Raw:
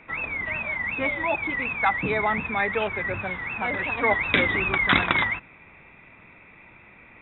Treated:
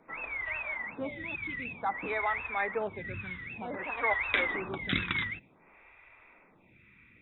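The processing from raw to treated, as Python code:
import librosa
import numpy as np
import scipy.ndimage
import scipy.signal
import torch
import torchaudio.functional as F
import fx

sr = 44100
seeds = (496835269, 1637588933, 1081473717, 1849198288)

y = fx.stagger_phaser(x, sr, hz=0.54)
y = y * librosa.db_to_amplitude(-5.5)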